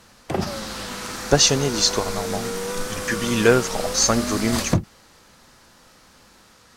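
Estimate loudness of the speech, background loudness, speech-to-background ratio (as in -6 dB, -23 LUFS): -21.0 LUFS, -27.5 LUFS, 6.5 dB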